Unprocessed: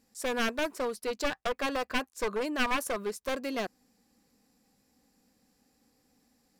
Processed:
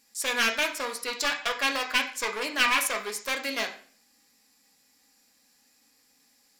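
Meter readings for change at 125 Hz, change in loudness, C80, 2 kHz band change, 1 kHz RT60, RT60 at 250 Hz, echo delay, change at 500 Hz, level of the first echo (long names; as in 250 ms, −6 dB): can't be measured, +5.5 dB, 14.0 dB, +8.0 dB, 0.45 s, 0.50 s, no echo audible, −2.5 dB, no echo audible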